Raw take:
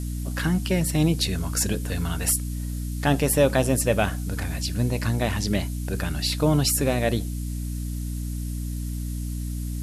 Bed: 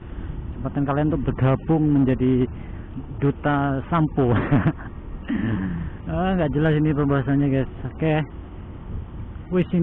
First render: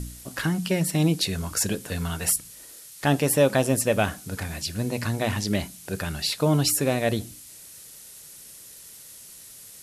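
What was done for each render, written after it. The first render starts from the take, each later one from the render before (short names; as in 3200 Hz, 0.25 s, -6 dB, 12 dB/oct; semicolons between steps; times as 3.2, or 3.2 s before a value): de-hum 60 Hz, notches 5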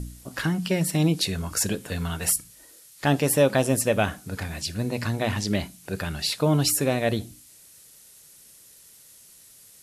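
noise print and reduce 6 dB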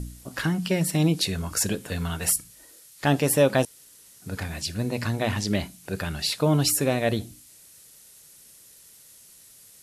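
3.65–4.22 room tone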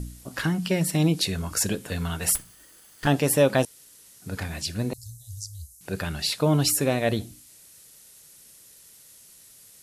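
2.35–3.07 minimum comb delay 0.63 ms; 4.93–5.81 inverse Chebyshev band-stop 200–2600 Hz, stop band 50 dB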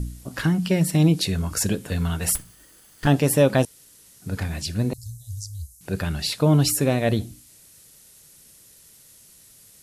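low shelf 290 Hz +6.5 dB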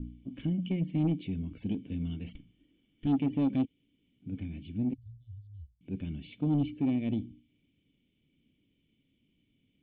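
vocal tract filter i; soft clip -21 dBFS, distortion -15 dB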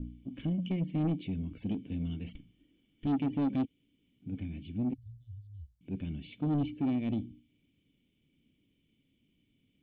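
soft clip -23.5 dBFS, distortion -19 dB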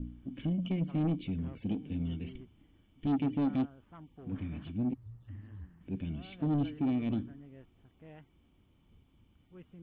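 add bed -32 dB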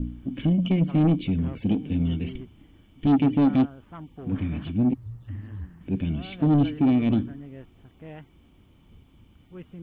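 gain +10.5 dB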